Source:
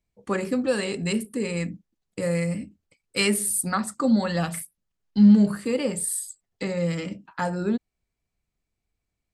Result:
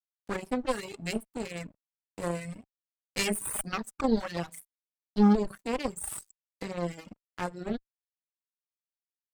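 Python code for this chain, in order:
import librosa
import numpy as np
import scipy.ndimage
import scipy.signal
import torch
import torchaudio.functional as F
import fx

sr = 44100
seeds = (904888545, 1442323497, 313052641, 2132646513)

y = np.sign(x) * np.maximum(np.abs(x) - 10.0 ** (-35.0 / 20.0), 0.0)
y = fx.cheby_harmonics(y, sr, harmonics=(2, 6, 8), levels_db=(-8, -13, -27), full_scale_db=-8.0)
y = fx.dereverb_blind(y, sr, rt60_s=0.73)
y = y * 10.0 ** (-6.0 / 20.0)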